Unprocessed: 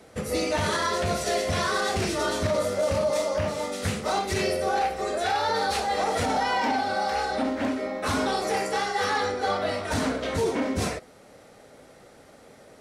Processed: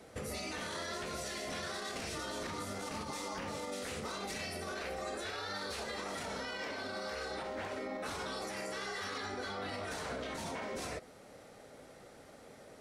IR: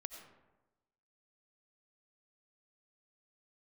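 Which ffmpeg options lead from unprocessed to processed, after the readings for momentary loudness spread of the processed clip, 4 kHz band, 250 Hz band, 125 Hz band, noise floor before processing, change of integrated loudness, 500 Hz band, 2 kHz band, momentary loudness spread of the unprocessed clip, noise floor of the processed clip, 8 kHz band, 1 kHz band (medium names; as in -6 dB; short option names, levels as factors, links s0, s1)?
16 LU, -10.5 dB, -14.5 dB, -15.5 dB, -52 dBFS, -13.5 dB, -15.0 dB, -11.0 dB, 3 LU, -56 dBFS, -10.0 dB, -16.0 dB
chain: -af "afftfilt=real='re*lt(hypot(re,im),0.224)':imag='im*lt(hypot(re,im),0.224)':win_size=1024:overlap=0.75,alimiter=level_in=1.5:limit=0.0631:level=0:latency=1:release=87,volume=0.668,volume=0.631"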